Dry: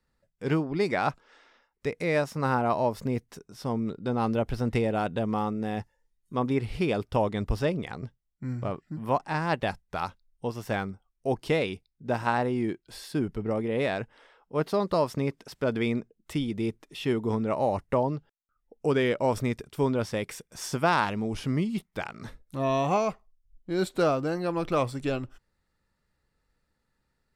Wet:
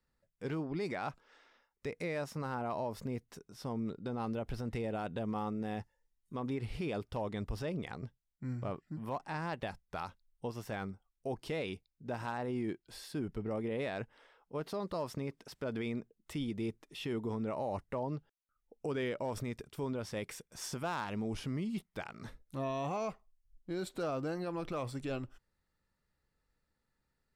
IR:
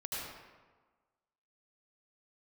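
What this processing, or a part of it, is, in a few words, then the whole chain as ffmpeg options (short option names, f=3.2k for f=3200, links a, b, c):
clipper into limiter: -af "asoftclip=type=hard:threshold=-15.5dB,alimiter=limit=-22.5dB:level=0:latency=1:release=54,volume=-6dB"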